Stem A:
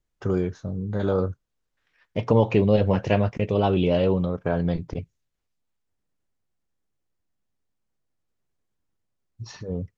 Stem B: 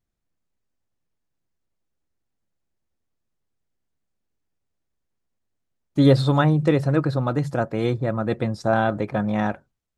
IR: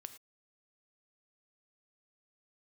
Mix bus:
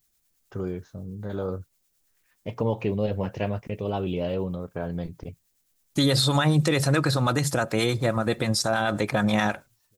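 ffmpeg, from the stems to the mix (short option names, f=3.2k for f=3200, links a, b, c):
-filter_complex "[0:a]adelay=300,volume=-7dB[a];[1:a]crystalizer=i=8.5:c=0,acrossover=split=800[b][c];[b]aeval=exprs='val(0)*(1-0.5/2+0.5/2*cos(2*PI*9.4*n/s))':c=same[d];[c]aeval=exprs='val(0)*(1-0.5/2-0.5/2*cos(2*PI*9.4*n/s))':c=same[e];[d][e]amix=inputs=2:normalize=0,volume=2.5dB,asplit=3[f][g][h];[g]volume=-15dB[i];[h]apad=whole_len=453167[j];[a][j]sidechaincompress=threshold=-48dB:ratio=6:attack=16:release=1000[k];[2:a]atrim=start_sample=2205[l];[i][l]afir=irnorm=-1:irlink=0[m];[k][f][m]amix=inputs=3:normalize=0,alimiter=limit=-12.5dB:level=0:latency=1:release=77"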